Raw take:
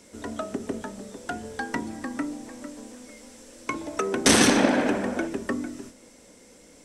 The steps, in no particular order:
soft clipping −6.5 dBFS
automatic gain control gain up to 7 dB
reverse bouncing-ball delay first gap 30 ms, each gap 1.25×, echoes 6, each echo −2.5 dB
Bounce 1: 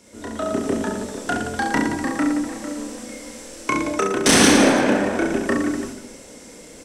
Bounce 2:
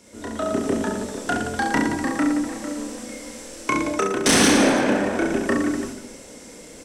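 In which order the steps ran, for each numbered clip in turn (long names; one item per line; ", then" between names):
soft clipping, then reverse bouncing-ball delay, then automatic gain control
reverse bouncing-ball delay, then automatic gain control, then soft clipping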